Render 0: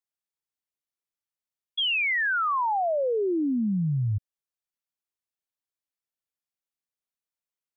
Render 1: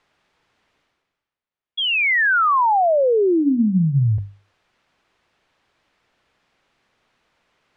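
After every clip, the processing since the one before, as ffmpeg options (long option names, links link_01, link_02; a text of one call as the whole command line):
ffmpeg -i in.wav -af "areverse,acompressor=mode=upward:threshold=-48dB:ratio=2.5,areverse,lowpass=2600,bandreject=frequency=50:width_type=h:width=6,bandreject=frequency=100:width_type=h:width=6,bandreject=frequency=150:width_type=h:width=6,bandreject=frequency=200:width_type=h:width=6,bandreject=frequency=250:width_type=h:width=6,bandreject=frequency=300:width_type=h:width=6,volume=9dB" out.wav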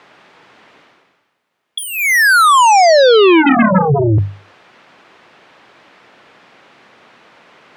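ffmpeg -i in.wav -filter_complex "[0:a]highpass=170,asplit=2[link_01][link_02];[link_02]aeval=exprs='0.282*sin(PI/2*7.08*val(0)/0.282)':channel_layout=same,volume=-4.5dB[link_03];[link_01][link_03]amix=inputs=2:normalize=0,lowpass=frequency=2700:poles=1,volume=5.5dB" out.wav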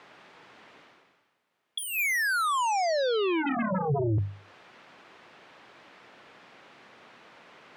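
ffmpeg -i in.wav -af "alimiter=limit=-15dB:level=0:latency=1:release=374,volume=-7dB" out.wav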